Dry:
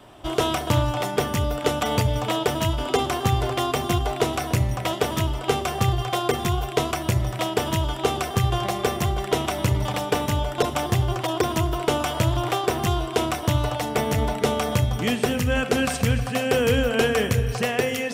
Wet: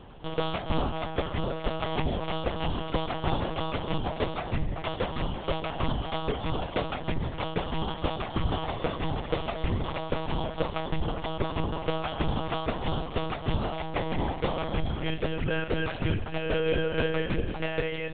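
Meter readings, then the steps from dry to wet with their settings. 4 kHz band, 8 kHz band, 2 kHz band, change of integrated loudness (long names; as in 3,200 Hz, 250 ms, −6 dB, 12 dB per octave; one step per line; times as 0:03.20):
−8.0 dB, below −40 dB, −7.0 dB, −7.5 dB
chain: mains hum 60 Hz, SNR 20 dB
one-pitch LPC vocoder at 8 kHz 160 Hz
level −6 dB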